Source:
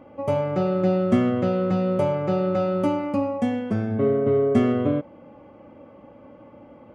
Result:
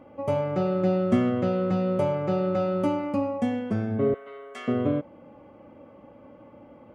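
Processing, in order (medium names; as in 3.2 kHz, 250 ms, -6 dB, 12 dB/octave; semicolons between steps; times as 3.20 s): 4.14–4.68 s: high-pass 1.4 kHz 12 dB/octave; trim -2.5 dB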